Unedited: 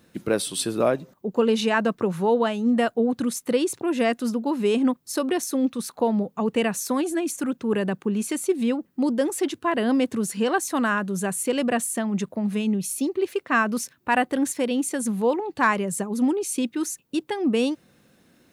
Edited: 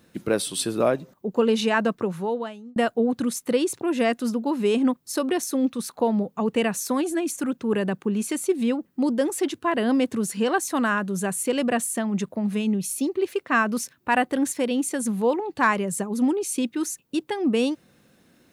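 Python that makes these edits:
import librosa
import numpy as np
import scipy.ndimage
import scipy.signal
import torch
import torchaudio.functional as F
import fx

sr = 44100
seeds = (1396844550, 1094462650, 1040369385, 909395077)

y = fx.edit(x, sr, fx.fade_out_span(start_s=1.86, length_s=0.9), tone=tone)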